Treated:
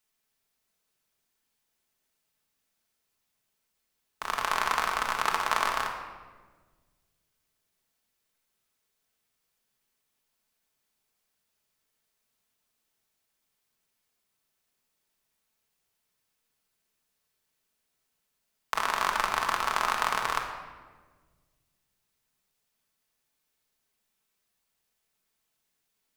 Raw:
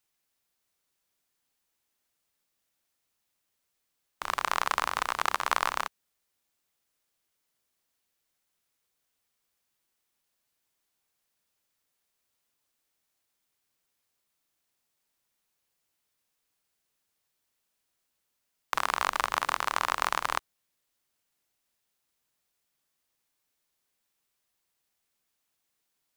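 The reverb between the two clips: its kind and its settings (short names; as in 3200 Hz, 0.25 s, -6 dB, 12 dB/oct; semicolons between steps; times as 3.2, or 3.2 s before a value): shoebox room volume 1300 m³, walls mixed, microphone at 1.5 m; gain -1 dB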